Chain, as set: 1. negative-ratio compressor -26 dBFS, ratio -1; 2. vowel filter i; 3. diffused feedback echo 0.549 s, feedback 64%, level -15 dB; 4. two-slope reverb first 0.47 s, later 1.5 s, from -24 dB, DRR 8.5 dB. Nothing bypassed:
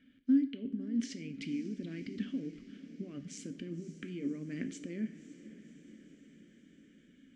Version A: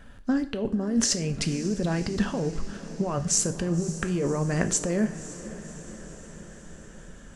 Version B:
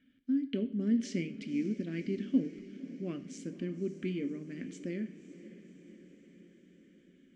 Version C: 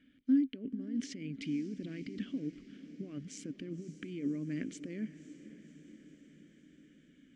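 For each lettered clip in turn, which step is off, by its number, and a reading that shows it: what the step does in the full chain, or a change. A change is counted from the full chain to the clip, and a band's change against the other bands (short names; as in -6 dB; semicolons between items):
2, 250 Hz band -11.0 dB; 1, momentary loudness spread change -2 LU; 4, echo-to-direct -7.0 dB to -12.5 dB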